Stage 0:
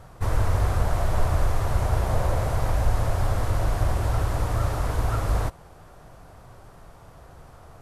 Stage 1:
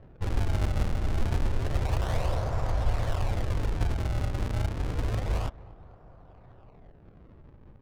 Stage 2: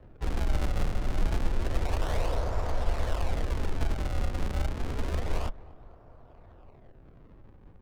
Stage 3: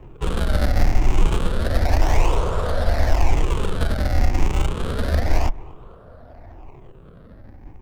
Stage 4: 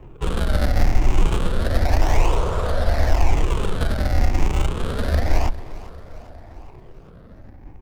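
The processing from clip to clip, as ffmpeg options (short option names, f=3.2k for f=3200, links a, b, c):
-af "acrusher=samples=36:mix=1:aa=0.000001:lfo=1:lforange=57.6:lforate=0.29,aecho=1:1:249|498|747|996:0.1|0.054|0.0292|0.0157,adynamicsmooth=sensitivity=6.5:basefreq=1.1k,volume=-4.5dB"
-af "afreqshift=-36"
-af "afftfilt=real='re*pow(10,9/40*sin(2*PI*(0.7*log(max(b,1)*sr/1024/100)/log(2)-(0.89)*(pts-256)/sr)))':imag='im*pow(10,9/40*sin(2*PI*(0.7*log(max(b,1)*sr/1024/100)/log(2)-(0.89)*(pts-256)/sr)))':win_size=1024:overlap=0.75,volume=9dB"
-af "aecho=1:1:402|804|1206|1608|2010:0.126|0.0718|0.0409|0.0233|0.0133"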